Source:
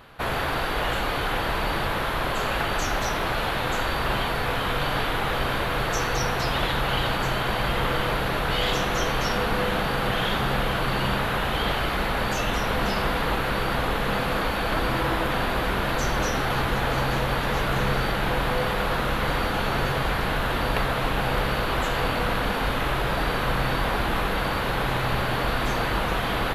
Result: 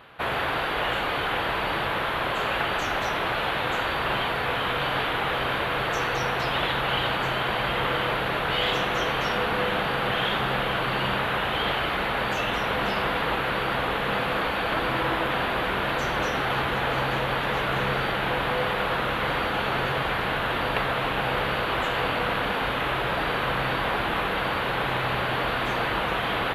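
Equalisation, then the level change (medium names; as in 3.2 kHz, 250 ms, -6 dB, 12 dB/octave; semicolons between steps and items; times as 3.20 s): high-pass 150 Hz 6 dB/octave; peaking EQ 230 Hz -2.5 dB 0.73 oct; resonant high shelf 4.1 kHz -7 dB, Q 1.5; 0.0 dB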